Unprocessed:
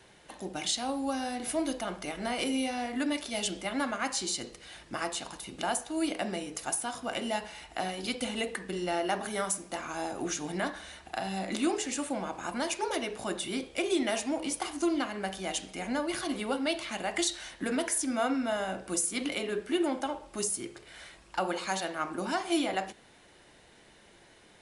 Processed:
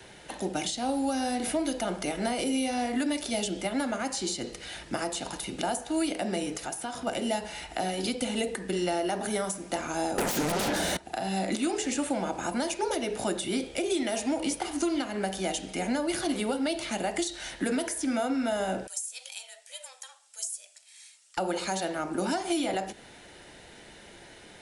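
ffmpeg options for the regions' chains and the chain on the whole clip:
-filter_complex "[0:a]asettb=1/sr,asplit=3[a][b][c];[a]atrim=end=6.544[d];[b]atrim=start=6.54:end=7.07,asetpts=PTS-STARTPTS,afade=t=in:d=0.004:c=qsin,afade=t=out:st=0.526:d=0.004:c=qsin,highshelf=f=8k:g=-6.5,acompressor=threshold=-42dB:ratio=2:attack=3.2:release=140:knee=1:detection=peak[e];[c]atrim=start=7.066[f];[d][e]acrossfade=d=0.004:c1=hsin:c2=qsin[g];[g][f]acrossfade=d=0.004:c1=qsin:c2=hsin,asettb=1/sr,asplit=3[h][i][j];[h]atrim=end=10.184[k];[i]atrim=start=10.18:end=10.97,asetpts=PTS-STARTPTS,afade=t=in:d=0.004:c=qsin,afade=t=out:st=0.786:d=0.004:c=qsin,equalizer=f=170:w=6.3:g=7,acompressor=threshold=-39dB:ratio=1.5:attack=3.2:release=140:knee=1:detection=peak,aeval=exprs='0.075*sin(PI/2*8.91*val(0)/0.075)':c=same[l];[j]atrim=start=10.966[m];[k][l]acrossfade=d=0.004:c1=hsin:c2=qsin[n];[n][m]acrossfade=d=0.004:c1=qsin:c2=hsin,asettb=1/sr,asplit=3[o][p][q];[o]atrim=end=18.874[r];[p]atrim=start=18.87:end=21.37,asetpts=PTS-STARTPTS,afade=t=in:d=0.004:c=qsin,afade=t=out:st=2.496:d=0.004:c=qsin,bandpass=f=7.6k:t=q:w=1.9,afreqshift=250[s];[q]atrim=start=21.366[t];[r][s]acrossfade=d=0.004:c1=hsin:c2=qsin[u];[u][t]acrossfade=d=0.004:c1=qsin:c2=hsin,bandreject=f=1.1k:w=8.1,alimiter=limit=-22dB:level=0:latency=1:release=228,acrossover=split=150|820|4600[v][w][x][y];[v]acompressor=threshold=-55dB:ratio=4[z];[w]acompressor=threshold=-35dB:ratio=4[aa];[x]acompressor=threshold=-46dB:ratio=4[ab];[y]acompressor=threshold=-43dB:ratio=4[ac];[z][aa][ab][ac]amix=inputs=4:normalize=0,volume=8dB"

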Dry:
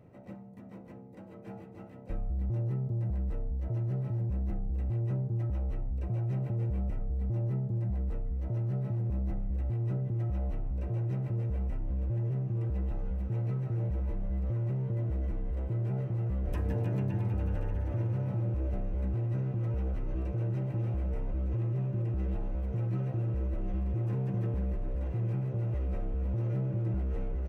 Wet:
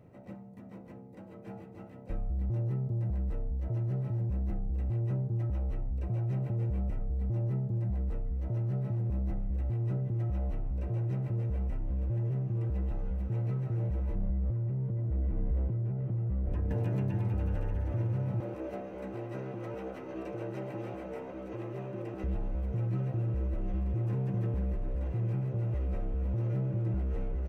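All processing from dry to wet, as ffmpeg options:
-filter_complex "[0:a]asettb=1/sr,asplit=3[a][b][c];[a]atrim=end=14.154[d];[b]atrim=start=14.15:end=16.71,asetpts=PTS-STARTPTS,afade=t=in:d=0.004:c=qsin,afade=t=out:st=2.556:d=0.004:c=qsin,highpass=f=190:p=1,acompressor=threshold=-39dB:ratio=10:attack=3.2:release=140:knee=1:detection=peak,aemphasis=mode=reproduction:type=riaa[e];[c]atrim=start=16.706[f];[d][e]acrossfade=d=0.004:c1=hsin:c2=qsin[g];[g][f]acrossfade=d=0.004:c1=qsin:c2=hsin,asettb=1/sr,asplit=3[h][i][j];[h]atrim=end=18.404[k];[i]atrim=start=18.4:end=22.24,asetpts=PTS-STARTPTS,afade=t=in:d=0.004:c=qsin,afade=t=out:st=3.836:d=0.004:c=qsin,acontrast=34,highpass=330[l];[j]atrim=start=22.236[m];[k][l]acrossfade=d=0.004:c1=hsin:c2=qsin[n];[n][m]acrossfade=d=0.004:c1=qsin:c2=hsin"

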